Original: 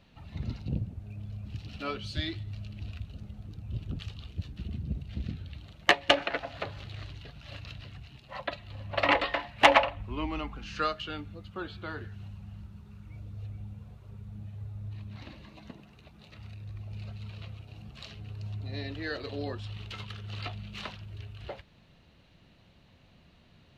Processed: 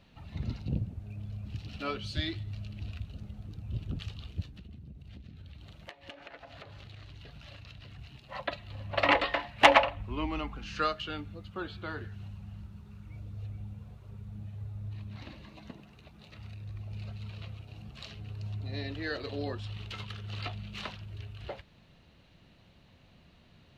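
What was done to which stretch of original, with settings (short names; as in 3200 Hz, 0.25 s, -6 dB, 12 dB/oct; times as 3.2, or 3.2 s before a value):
4.42–7.99 compressor 10:1, threshold -44 dBFS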